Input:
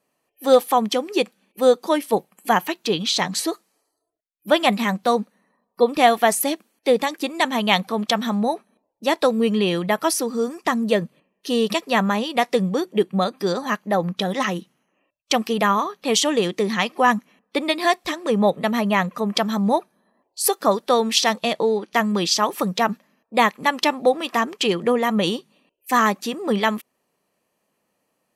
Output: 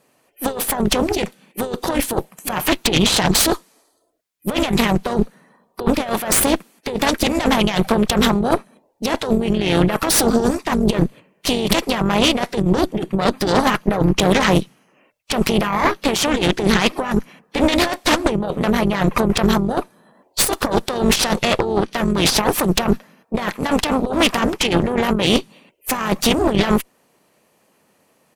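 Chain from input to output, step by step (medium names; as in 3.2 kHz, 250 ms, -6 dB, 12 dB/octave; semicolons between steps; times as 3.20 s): harmony voices -5 st -16 dB, -4 st -9 dB, -3 st -10 dB; compressor with a negative ratio -25 dBFS, ratio -1; Chebyshev shaper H 5 -17 dB, 6 -8 dB, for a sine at -6 dBFS; trim +1.5 dB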